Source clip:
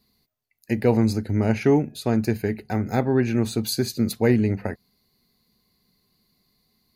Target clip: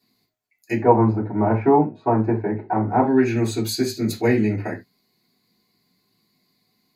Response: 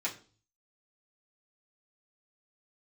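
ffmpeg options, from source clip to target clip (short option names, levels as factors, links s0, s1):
-filter_complex "[0:a]asettb=1/sr,asplit=3[s0][s1][s2];[s0]atrim=end=0.774[s3];[s1]atrim=start=0.77:end=3.03,asetpts=PTS-STARTPTS,afade=t=in:d=0.004:c=qsin,afade=t=out:st=2.256:d=0.004:c=qsin,lowpass=f=1000:t=q:w=4.9[s4];[s2]atrim=start=3.026[s5];[s3][s4]acrossfade=d=0.004:c1=hsin:c2=qsin[s6];[s6][s5]acrossfade=d=0.004:c1=qsin:c2=hsin[s7];[1:a]atrim=start_sample=2205,atrim=end_sample=4410[s8];[s7][s8]afir=irnorm=-1:irlink=0,volume=0.891"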